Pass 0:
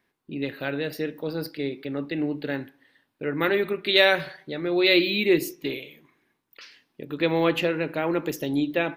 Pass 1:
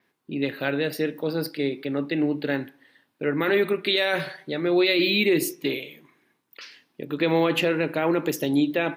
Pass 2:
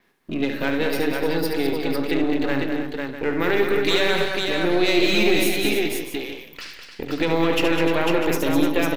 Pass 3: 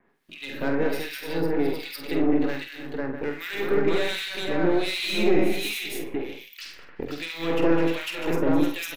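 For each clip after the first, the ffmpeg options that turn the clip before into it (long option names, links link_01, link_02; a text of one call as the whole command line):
ffmpeg -i in.wav -af "highpass=110,adynamicequalizer=threshold=0.00224:dfrequency=9400:dqfactor=2.3:tfrequency=9400:tqfactor=2.3:attack=5:release=100:ratio=0.375:range=3:mode=boostabove:tftype=bell,alimiter=limit=-15.5dB:level=0:latency=1:release=16,volume=3.5dB" out.wav
ffmpeg -i in.wav -filter_complex "[0:a]aeval=exprs='if(lt(val(0),0),0.447*val(0),val(0))':channel_layout=same,acompressor=threshold=-36dB:ratio=1.5,asplit=2[link_01][link_02];[link_02]aecho=0:1:72|177|204|301|499|648:0.447|0.141|0.447|0.316|0.631|0.251[link_03];[link_01][link_03]amix=inputs=2:normalize=0,volume=8dB" out.wav
ffmpeg -i in.wav -filter_complex "[0:a]acrossover=split=1900[link_01][link_02];[link_01]aeval=exprs='val(0)*(1-1/2+1/2*cos(2*PI*1.3*n/s))':channel_layout=same[link_03];[link_02]aeval=exprs='val(0)*(1-1/2-1/2*cos(2*PI*1.3*n/s))':channel_layout=same[link_04];[link_03][link_04]amix=inputs=2:normalize=0,acrossover=split=620[link_05][link_06];[link_06]asoftclip=type=tanh:threshold=-24dB[link_07];[link_05][link_07]amix=inputs=2:normalize=0,asplit=2[link_08][link_09];[link_09]adelay=48,volume=-8dB[link_10];[link_08][link_10]amix=inputs=2:normalize=0" out.wav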